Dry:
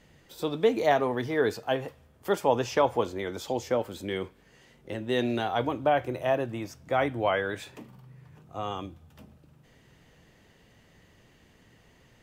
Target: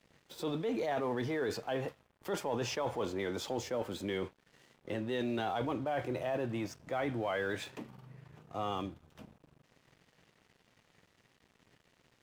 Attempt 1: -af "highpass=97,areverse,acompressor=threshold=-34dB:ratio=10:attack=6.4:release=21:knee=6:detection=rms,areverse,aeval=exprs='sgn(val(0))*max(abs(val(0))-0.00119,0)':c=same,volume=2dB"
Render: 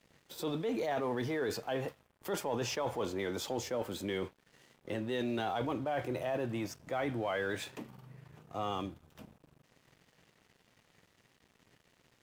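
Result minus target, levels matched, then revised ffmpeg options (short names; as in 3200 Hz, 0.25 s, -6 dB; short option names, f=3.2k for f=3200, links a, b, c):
8000 Hz band +2.5 dB
-af "highpass=97,highshelf=f=9.3k:g=-9,areverse,acompressor=threshold=-34dB:ratio=10:attack=6.4:release=21:knee=6:detection=rms,areverse,aeval=exprs='sgn(val(0))*max(abs(val(0))-0.00119,0)':c=same,volume=2dB"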